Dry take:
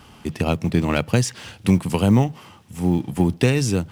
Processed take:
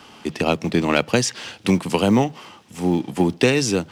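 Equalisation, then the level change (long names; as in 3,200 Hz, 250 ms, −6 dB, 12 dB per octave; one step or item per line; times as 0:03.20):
three-way crossover with the lows and the highs turned down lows −16 dB, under 270 Hz, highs −14 dB, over 6,600 Hz
parametric band 170 Hz +5 dB 2 octaves
high-shelf EQ 4,600 Hz +7.5 dB
+3.0 dB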